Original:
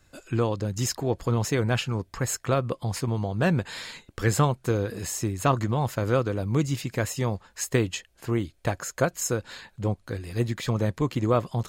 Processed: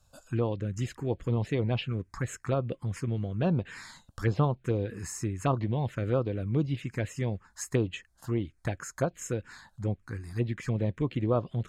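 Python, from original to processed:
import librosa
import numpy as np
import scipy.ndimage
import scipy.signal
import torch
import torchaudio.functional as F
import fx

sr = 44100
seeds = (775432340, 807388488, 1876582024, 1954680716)

y = fx.env_phaser(x, sr, low_hz=330.0, high_hz=2000.0, full_db=-18.5)
y = fx.env_lowpass_down(y, sr, base_hz=2400.0, full_db=-20.0)
y = y * 10.0 ** (-3.0 / 20.0)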